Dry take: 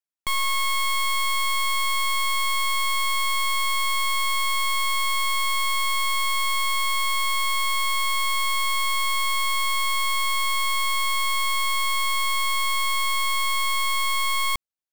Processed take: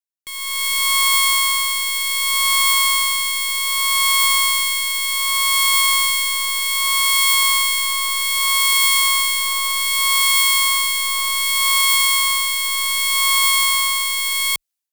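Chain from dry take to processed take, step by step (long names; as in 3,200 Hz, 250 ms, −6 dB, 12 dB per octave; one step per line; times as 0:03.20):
rotating-speaker cabinet horn 0.65 Hz
automatic gain control gain up to 13.5 dB
spectral tilt +3 dB per octave
level −5.5 dB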